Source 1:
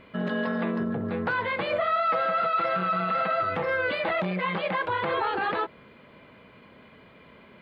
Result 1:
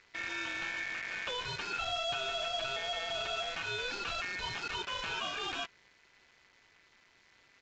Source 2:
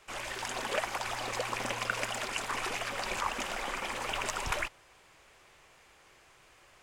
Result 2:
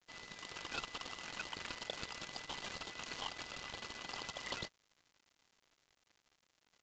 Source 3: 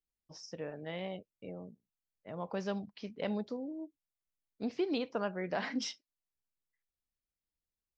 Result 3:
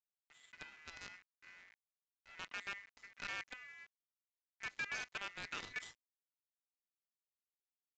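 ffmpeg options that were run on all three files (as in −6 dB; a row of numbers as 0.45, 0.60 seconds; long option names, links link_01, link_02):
-af "acrusher=bits=6:dc=4:mix=0:aa=0.000001,aeval=exprs='val(0)*sin(2*PI*2000*n/s)':channel_layout=same,aresample=16000,aresample=44100,volume=-7.5dB"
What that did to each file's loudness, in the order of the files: −8.5, −10.5, −7.0 LU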